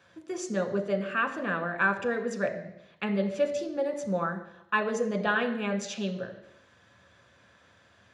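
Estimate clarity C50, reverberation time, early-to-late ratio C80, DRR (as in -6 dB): 10.0 dB, 0.85 s, 12.0 dB, 3.5 dB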